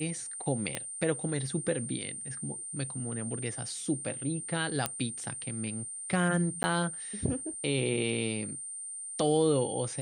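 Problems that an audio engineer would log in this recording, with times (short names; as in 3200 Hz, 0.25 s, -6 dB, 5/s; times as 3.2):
tone 8900 Hz -38 dBFS
0.75 pop -16 dBFS
4.86 pop -11 dBFS
6.63–6.64 gap 10 ms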